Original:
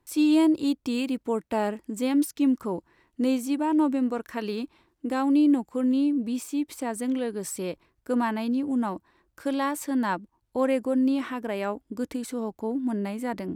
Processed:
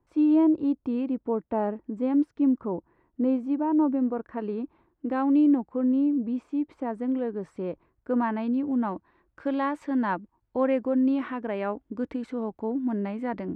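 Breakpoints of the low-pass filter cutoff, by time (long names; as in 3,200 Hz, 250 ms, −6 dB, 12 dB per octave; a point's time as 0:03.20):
0:04.62 1,100 Hz
0:05.30 2,000 Hz
0:05.71 1,300 Hz
0:07.69 1,300 Hz
0:08.70 2,200 Hz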